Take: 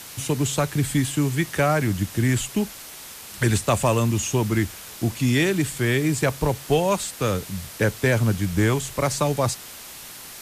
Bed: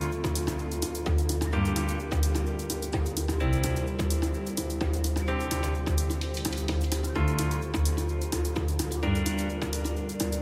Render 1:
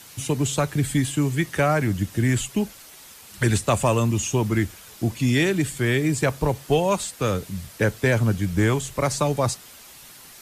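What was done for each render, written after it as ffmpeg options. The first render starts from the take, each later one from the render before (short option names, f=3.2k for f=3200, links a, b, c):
-af "afftdn=nr=7:nf=-40"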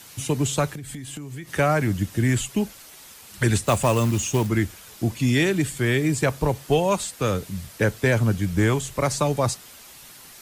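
-filter_complex "[0:a]asettb=1/sr,asplit=3[a][b][c];[a]atrim=end=0.714[d];[b]atrim=start=0.71:end=1.52,asetpts=PTS-STARTPTS,afade=t=in:d=0.004:c=qsin,afade=t=out:st=0.806:d=0.004:c=qsin,acompressor=threshold=-31dB:ratio=16:attack=3.2:release=140:knee=1:detection=peak[e];[c]atrim=start=1.516[f];[d][e]acrossfade=d=0.004:c1=hsin:c2=qsin[g];[g][f]acrossfade=d=0.004:c1=qsin:c2=hsin,asettb=1/sr,asplit=3[h][i][j];[h]atrim=end=3.654[k];[i]atrim=start=3.65:end=4.47,asetpts=PTS-STARTPTS,afade=t=in:d=0.004:c=qsin,afade=t=out:st=0.816:d=0.004:c=qsin,acrusher=bits=4:mode=log:mix=0:aa=0.000001[l];[j]atrim=start=4.466[m];[k][l]acrossfade=d=0.004:c1=hsin:c2=qsin[n];[n][m]acrossfade=d=0.004:c1=qsin:c2=hsin"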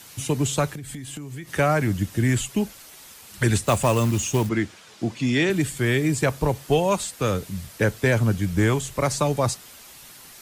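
-filter_complex "[0:a]asettb=1/sr,asplit=3[a][b][c];[a]atrim=end=4.494[d];[b]atrim=start=4.49:end=5.5,asetpts=PTS-STARTPTS,afade=t=in:d=0.004:c=qsin,afade=t=out:st=1.006:d=0.004:c=qsin,highpass=150,lowpass=6k[e];[c]atrim=start=5.496[f];[d][e]acrossfade=d=0.004:c1=hsin:c2=qsin[g];[g][f]acrossfade=d=0.004:c1=qsin:c2=hsin"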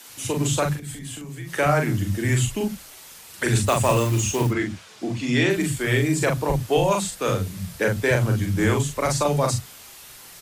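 -filter_complex "[0:a]asplit=2[a][b];[b]adelay=41,volume=-4dB[c];[a][c]amix=inputs=2:normalize=0,acrossover=split=220[d][e];[d]adelay=70[f];[f][e]amix=inputs=2:normalize=0"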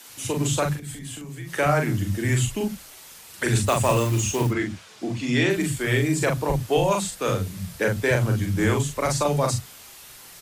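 -af "volume=-1dB"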